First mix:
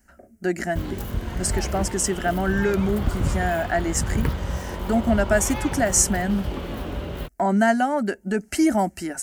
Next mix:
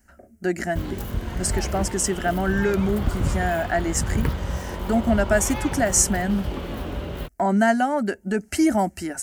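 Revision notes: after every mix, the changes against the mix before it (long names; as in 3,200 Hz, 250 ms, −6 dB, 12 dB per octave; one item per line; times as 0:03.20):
speech: add parametric band 84 Hz +7 dB 0.38 octaves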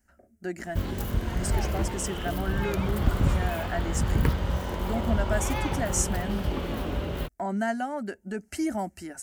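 speech −9.5 dB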